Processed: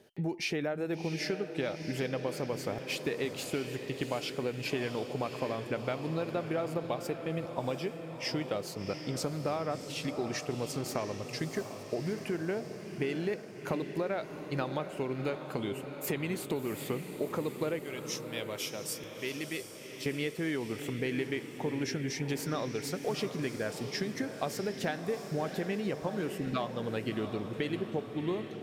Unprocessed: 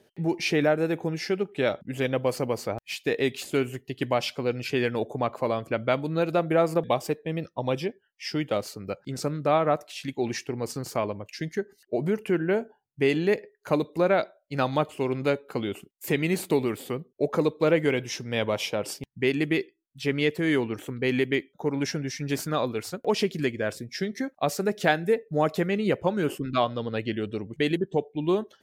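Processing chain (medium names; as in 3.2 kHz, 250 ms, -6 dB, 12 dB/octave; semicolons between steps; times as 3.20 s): 17.79–20.06 s: pre-emphasis filter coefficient 0.8; compression, threshold -31 dBFS, peak gain reduction 14 dB; echo that smears into a reverb 707 ms, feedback 59%, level -8.5 dB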